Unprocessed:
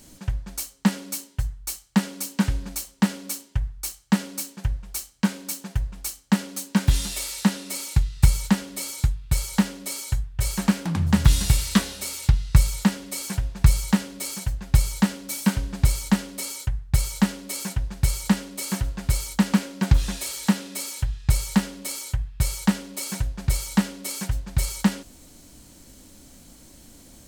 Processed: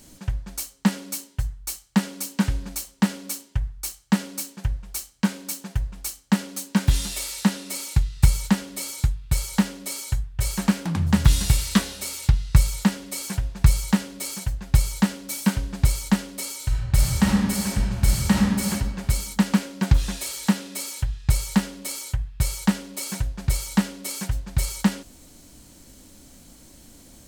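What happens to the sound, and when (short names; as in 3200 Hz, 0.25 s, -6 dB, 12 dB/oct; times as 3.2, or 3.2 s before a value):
16.57–18.66 reverb throw, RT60 1.8 s, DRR -2 dB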